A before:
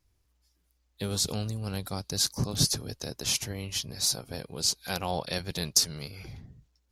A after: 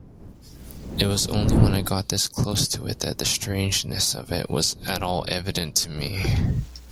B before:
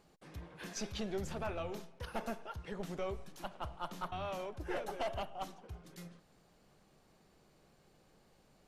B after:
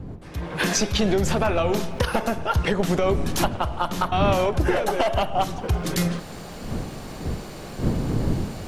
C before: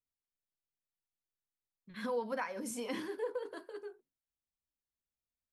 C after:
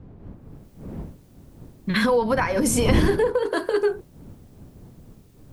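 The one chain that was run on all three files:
camcorder AGC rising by 44 dB per second
wind on the microphone 200 Hz −31 dBFS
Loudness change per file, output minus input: +5.5, +18.5, +18.0 LU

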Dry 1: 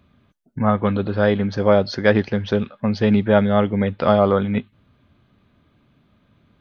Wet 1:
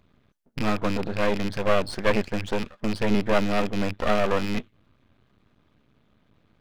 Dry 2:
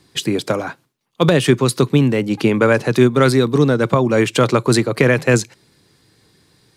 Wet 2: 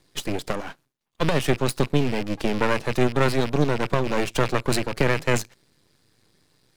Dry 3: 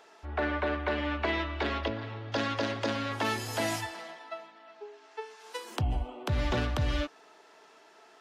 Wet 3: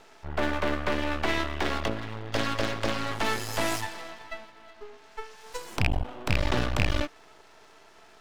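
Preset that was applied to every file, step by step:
loose part that buzzes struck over −23 dBFS, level −16 dBFS
half-wave rectification
normalise the peak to −6 dBFS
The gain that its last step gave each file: −1.0, −4.5, +6.5 decibels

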